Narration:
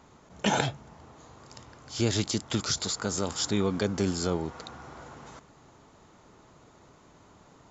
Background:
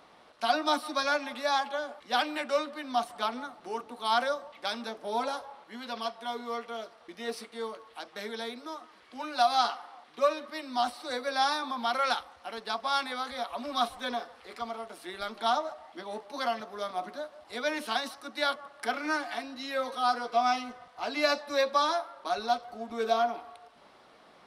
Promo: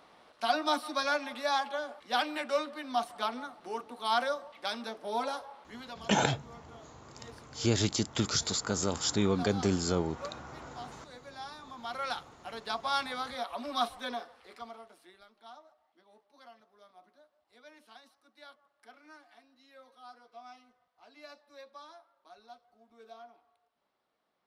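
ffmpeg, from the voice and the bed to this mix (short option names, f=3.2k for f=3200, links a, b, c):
-filter_complex "[0:a]adelay=5650,volume=-1dB[a];[1:a]volume=13dB,afade=t=out:st=5.68:d=0.42:silence=0.177828,afade=t=in:st=11.57:d=1.13:silence=0.177828,afade=t=out:st=13.8:d=1.47:silence=0.0794328[b];[a][b]amix=inputs=2:normalize=0"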